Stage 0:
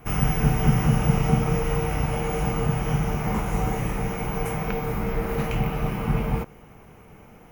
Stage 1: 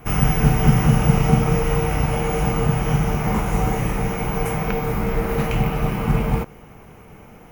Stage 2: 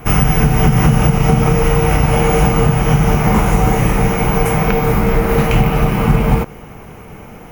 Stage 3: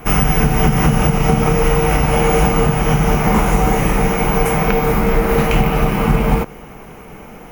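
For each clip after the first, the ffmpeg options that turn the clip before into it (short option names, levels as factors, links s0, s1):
-af "acrusher=bits=8:mode=log:mix=0:aa=0.000001,volume=1.68"
-af "alimiter=limit=0.282:level=0:latency=1:release=165,volume=2.82"
-af "equalizer=f=99:t=o:w=0.74:g=-10.5"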